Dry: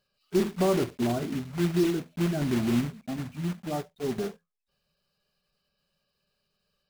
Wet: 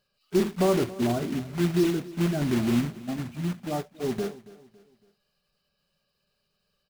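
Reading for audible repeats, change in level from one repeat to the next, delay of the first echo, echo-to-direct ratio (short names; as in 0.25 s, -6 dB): 3, -7.5 dB, 0.278 s, -18.0 dB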